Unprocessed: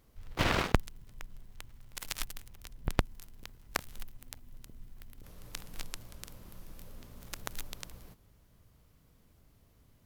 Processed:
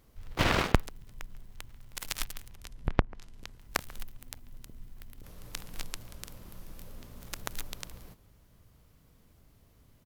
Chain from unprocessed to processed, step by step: speakerphone echo 0.14 s, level -20 dB; 2.51–3.59 treble ducked by the level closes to 1200 Hz, closed at -26.5 dBFS; gain +2.5 dB

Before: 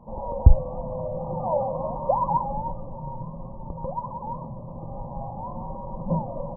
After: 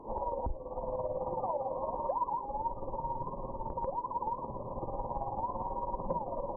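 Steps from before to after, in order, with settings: fifteen-band EQ 160 Hz -10 dB, 400 Hz +9 dB, 1000 Hz +8 dB; compressor 5:1, threshold -30 dBFS, peak gain reduction 20.5 dB; tremolo 18 Hz, depth 59%; band noise 240–540 Hz -53 dBFS

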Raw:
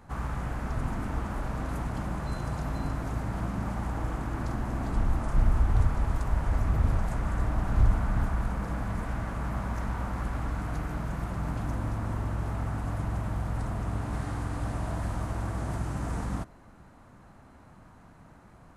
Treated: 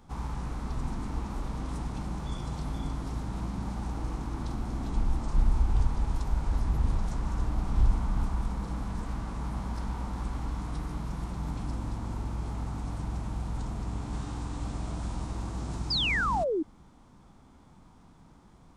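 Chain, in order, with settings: formant shift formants -3 st; fifteen-band EQ 100 Hz -7 dB, 630 Hz -9 dB, 1600 Hz -6 dB, 4000 Hz +3 dB; painted sound fall, 15.9–16.63, 290–5200 Hz -28 dBFS

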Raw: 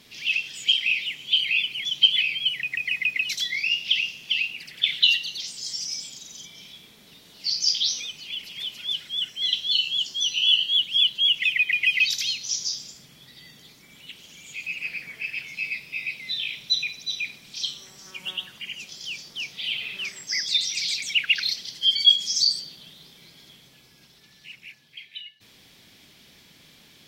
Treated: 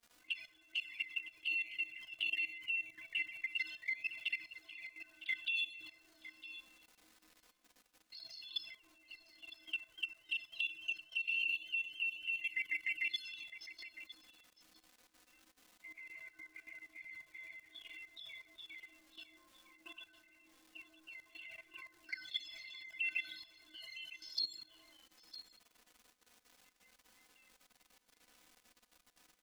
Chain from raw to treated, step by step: low-pass opened by the level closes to 850 Hz, open at -19 dBFS; gate -54 dBFS, range -13 dB; bell 6200 Hz -11 dB 1 oct; metallic resonator 340 Hz, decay 0.43 s, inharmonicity 0.03; varispeed -8%; crackle 580/s -60 dBFS; envelope flanger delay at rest 4.3 ms, full sweep at -40 dBFS; level quantiser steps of 16 dB; echo 0.958 s -14.5 dB; gain +12.5 dB

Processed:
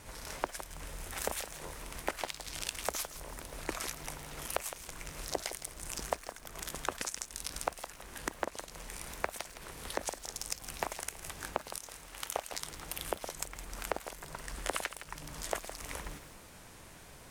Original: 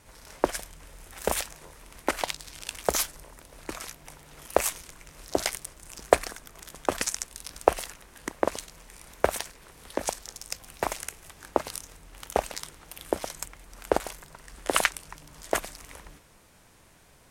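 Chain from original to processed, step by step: 11.78–12.53 low shelf 370 Hz -11 dB; compressor 8:1, threshold -37 dBFS, peak gain reduction 25 dB; lo-fi delay 0.163 s, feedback 35%, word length 9-bit, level -11 dB; gain +4.5 dB

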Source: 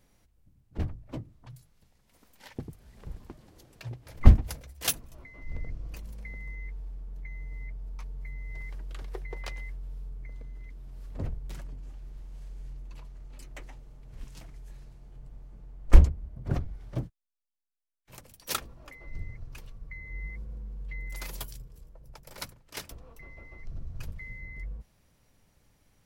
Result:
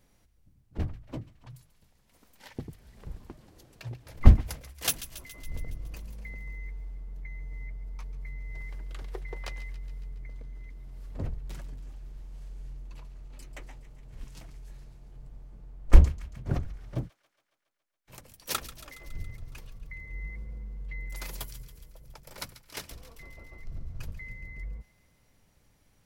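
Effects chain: thin delay 0.139 s, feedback 65%, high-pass 1500 Hz, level -14 dB

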